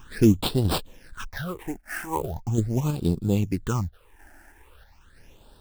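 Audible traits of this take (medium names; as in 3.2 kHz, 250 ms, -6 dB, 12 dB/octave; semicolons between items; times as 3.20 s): random-step tremolo 3.1 Hz; aliases and images of a low sample rate 7.1 kHz, jitter 20%; phasing stages 8, 0.4 Hz, lowest notch 140–2100 Hz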